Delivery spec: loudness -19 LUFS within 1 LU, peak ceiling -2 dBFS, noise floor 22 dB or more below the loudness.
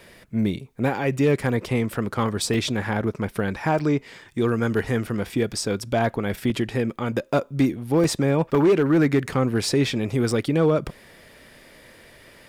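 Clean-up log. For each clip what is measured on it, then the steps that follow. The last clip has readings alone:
clipped 0.4%; flat tops at -12.5 dBFS; dropouts 7; longest dropout 1.8 ms; loudness -23.0 LUFS; peak -12.5 dBFS; loudness target -19.0 LUFS
-> clip repair -12.5 dBFS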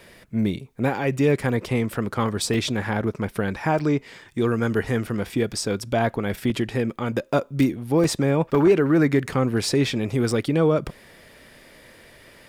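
clipped 0.0%; dropouts 7; longest dropout 1.8 ms
-> interpolate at 1.43/2.54/3.79/6.5/8.04/8.55/10.31, 1.8 ms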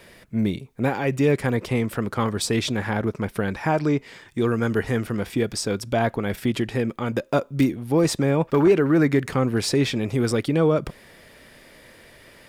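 dropouts 0; loudness -23.0 LUFS; peak -7.0 dBFS; loudness target -19.0 LUFS
-> gain +4 dB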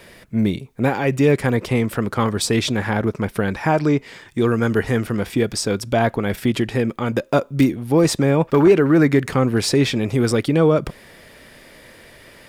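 loudness -19.0 LUFS; peak -3.0 dBFS; noise floor -47 dBFS

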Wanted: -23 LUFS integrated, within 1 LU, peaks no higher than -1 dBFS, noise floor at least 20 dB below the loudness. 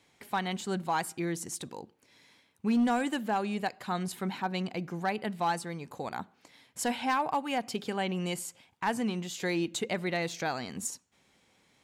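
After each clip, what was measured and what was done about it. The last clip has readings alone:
clipped 0.5%; flat tops at -21.5 dBFS; loudness -32.5 LUFS; peak -21.5 dBFS; loudness target -23.0 LUFS
-> clip repair -21.5 dBFS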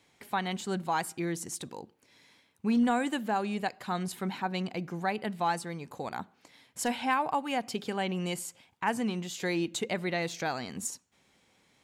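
clipped 0.0%; loudness -32.5 LUFS; peak -15.5 dBFS; loudness target -23.0 LUFS
-> gain +9.5 dB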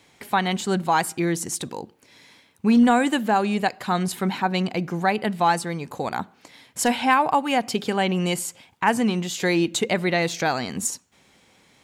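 loudness -23.0 LUFS; peak -6.0 dBFS; noise floor -59 dBFS

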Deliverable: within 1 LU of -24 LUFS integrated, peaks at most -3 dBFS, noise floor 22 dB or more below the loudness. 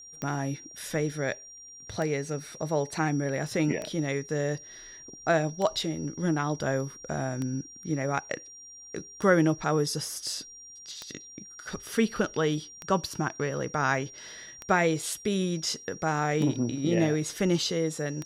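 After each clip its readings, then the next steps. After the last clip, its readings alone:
clicks 11; steady tone 5700 Hz; tone level -45 dBFS; loudness -29.0 LUFS; peak -9.0 dBFS; loudness target -24.0 LUFS
-> de-click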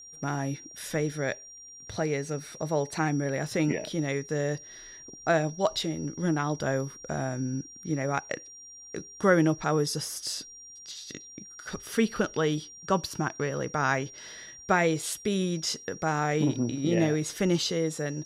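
clicks 0; steady tone 5700 Hz; tone level -45 dBFS
-> notch 5700 Hz, Q 30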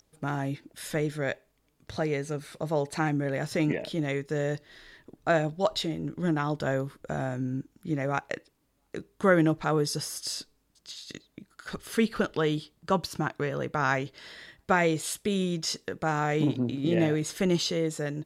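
steady tone none; loudness -29.0 LUFS; peak -9.0 dBFS; loudness target -24.0 LUFS
-> gain +5 dB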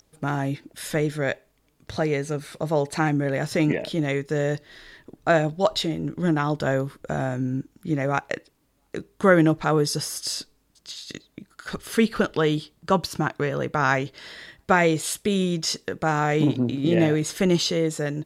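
loudness -24.0 LUFS; peak -4.0 dBFS; noise floor -66 dBFS

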